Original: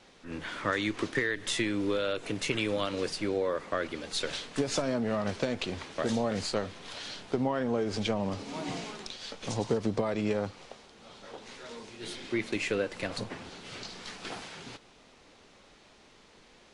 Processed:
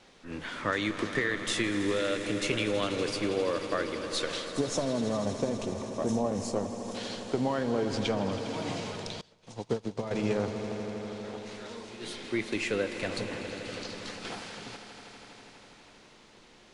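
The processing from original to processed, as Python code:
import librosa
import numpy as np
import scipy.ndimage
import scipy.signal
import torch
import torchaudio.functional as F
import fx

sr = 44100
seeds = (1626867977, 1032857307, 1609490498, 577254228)

y = fx.spec_box(x, sr, start_s=4.5, length_s=2.45, low_hz=1200.0, high_hz=5100.0, gain_db=-12)
y = fx.echo_swell(y, sr, ms=81, loudest=5, wet_db=-15.0)
y = fx.upward_expand(y, sr, threshold_db=-40.0, expansion=2.5, at=(9.21, 10.11))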